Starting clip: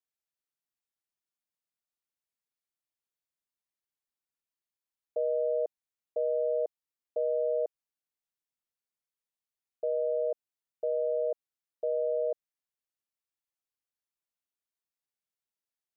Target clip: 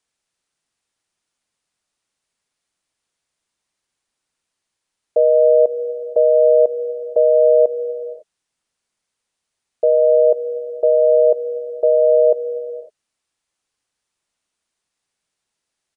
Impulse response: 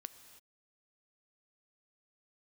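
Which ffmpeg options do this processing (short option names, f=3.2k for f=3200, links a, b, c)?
-filter_complex "[0:a]asplit=2[a][b];[1:a]atrim=start_sample=2205,asetrate=26460,aresample=44100[c];[b][c]afir=irnorm=-1:irlink=0,volume=9.5dB[d];[a][d]amix=inputs=2:normalize=0,aresample=22050,aresample=44100,volume=6.5dB"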